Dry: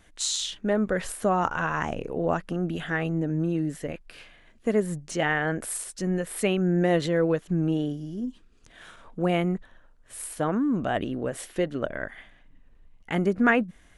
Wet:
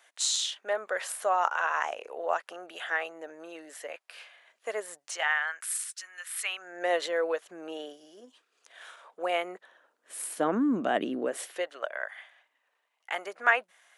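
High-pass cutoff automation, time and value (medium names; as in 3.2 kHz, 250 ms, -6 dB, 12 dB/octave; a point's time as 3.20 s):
high-pass 24 dB/octave
4.95 s 590 Hz
5.66 s 1.3 kHz
6.37 s 1.3 kHz
6.88 s 520 Hz
9.40 s 520 Hz
10.46 s 230 Hz
11.18 s 230 Hz
11.69 s 640 Hz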